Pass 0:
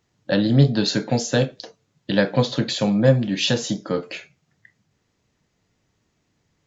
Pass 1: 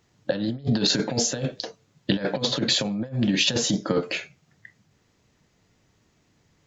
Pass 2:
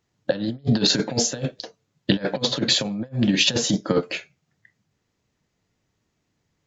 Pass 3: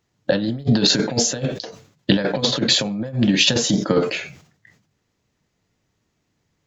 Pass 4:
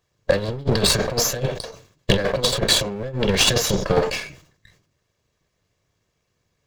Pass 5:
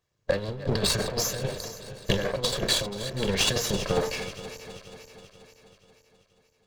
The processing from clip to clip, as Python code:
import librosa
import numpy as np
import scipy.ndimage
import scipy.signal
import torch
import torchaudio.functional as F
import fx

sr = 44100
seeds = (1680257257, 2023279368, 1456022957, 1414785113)

y1 = fx.over_compress(x, sr, threshold_db=-23.0, ratio=-0.5)
y2 = fx.upward_expand(y1, sr, threshold_db=-44.0, expansion=1.5)
y2 = y2 * 10.0 ** (4.0 / 20.0)
y3 = fx.sustainer(y2, sr, db_per_s=100.0)
y3 = y3 * 10.0 ** (2.5 / 20.0)
y4 = fx.lower_of_two(y3, sr, delay_ms=1.8)
y4 = y4 * 10.0 ** (1.0 / 20.0)
y5 = fx.reverse_delay_fb(y4, sr, ms=241, feedback_pct=69, wet_db=-13)
y5 = y5 * 10.0 ** (-7.0 / 20.0)